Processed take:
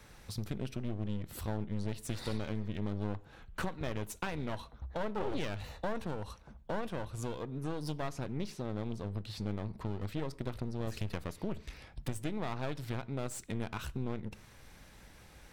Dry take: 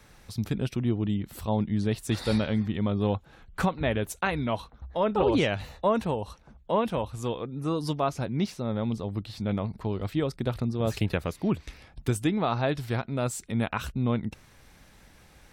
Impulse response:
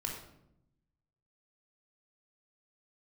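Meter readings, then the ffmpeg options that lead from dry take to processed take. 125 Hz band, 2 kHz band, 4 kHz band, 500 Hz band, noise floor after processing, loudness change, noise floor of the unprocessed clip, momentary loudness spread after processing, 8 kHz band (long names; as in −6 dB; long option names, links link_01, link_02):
−9.0 dB, −9.5 dB, −9.0 dB, −11.5 dB, −57 dBFS, −10.5 dB, −56 dBFS, 8 LU, −6.5 dB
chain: -filter_complex "[0:a]aeval=exprs='clip(val(0),-1,0.0141)':channel_layout=same,acompressor=threshold=-34dB:ratio=2.5,asplit=2[link_01][link_02];[1:a]atrim=start_sample=2205,afade=type=out:start_time=0.22:duration=0.01,atrim=end_sample=10143[link_03];[link_02][link_03]afir=irnorm=-1:irlink=0,volume=-17dB[link_04];[link_01][link_04]amix=inputs=2:normalize=0,volume=-2dB"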